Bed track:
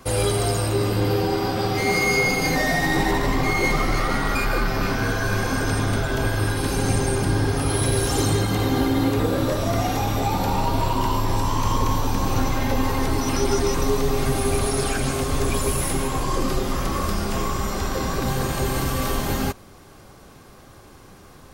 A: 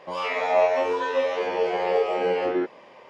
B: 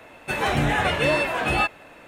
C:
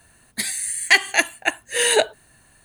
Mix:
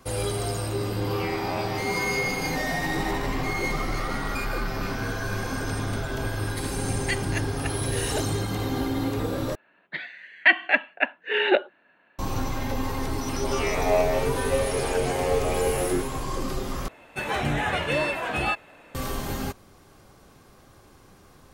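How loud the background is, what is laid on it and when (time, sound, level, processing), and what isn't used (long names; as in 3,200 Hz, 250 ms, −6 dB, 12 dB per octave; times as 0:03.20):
bed track −6.5 dB
0:00.96: mix in A −6.5 dB + high-pass filter 830 Hz 24 dB per octave
0:06.18: mix in C −15 dB
0:09.55: overwrite with C −2 dB + single-sideband voice off tune −59 Hz 300–3,100 Hz
0:13.36: mix in A −2 dB + parametric band 1,000 Hz −5 dB 0.37 octaves
0:16.88: overwrite with B −4 dB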